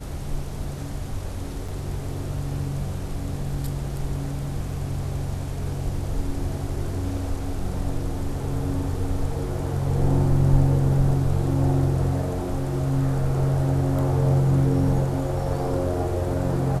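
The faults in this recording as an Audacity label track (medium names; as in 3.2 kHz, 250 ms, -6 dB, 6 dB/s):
1.680000	1.680000	dropout 4.8 ms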